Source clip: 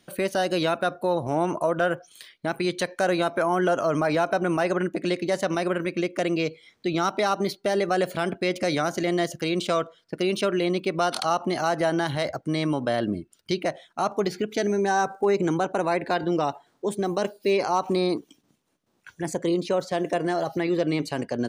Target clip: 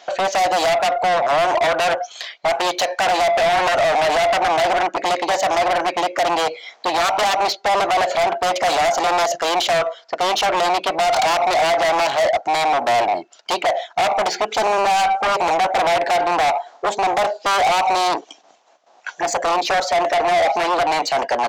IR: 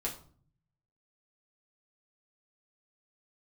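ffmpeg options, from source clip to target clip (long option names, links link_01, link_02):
-af "aresample=16000,aeval=exprs='0.251*sin(PI/2*3.98*val(0)/0.251)':channel_layout=same,aresample=44100,highpass=frequency=710:width_type=q:width=4.9,asoftclip=type=tanh:threshold=-14dB"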